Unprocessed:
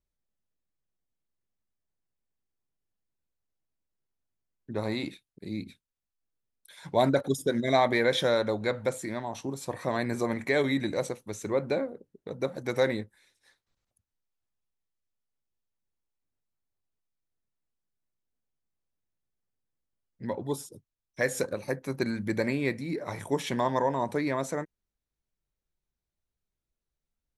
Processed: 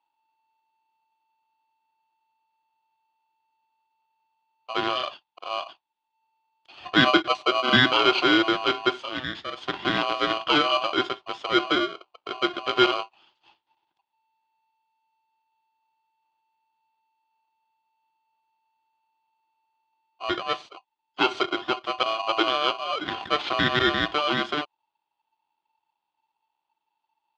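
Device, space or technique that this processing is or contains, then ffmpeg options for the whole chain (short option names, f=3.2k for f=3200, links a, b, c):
ring modulator pedal into a guitar cabinet: -filter_complex "[0:a]asettb=1/sr,asplit=3[a][b][c];[a]atrim=end=9.014[d];[b]atrim=start=9.01:end=9.58,asetpts=PTS-STARTPTS,afade=t=in:d=0.004:c=qsin,afade=t=out:st=0.566:d=0.004:c=qsin,highpass=320[e];[c]atrim=start=9.576[f];[d][e]acrossfade=d=0.004:c1=hsin:c2=qsin[g];[g][f]acrossfade=d=0.004:c1=qsin:c2=hsin,aeval=exprs='val(0)*sgn(sin(2*PI*890*n/s))':c=same,highpass=88,equalizer=f=340:t=q:w=4:g=7,equalizer=f=490:t=q:w=4:g=-5,equalizer=f=880:t=q:w=4:g=5,equalizer=f=3.4k:t=q:w=4:g=9,lowpass=f=4.2k:w=0.5412,lowpass=f=4.2k:w=1.3066,highshelf=f=9.8k:g=-4,volume=3.5dB"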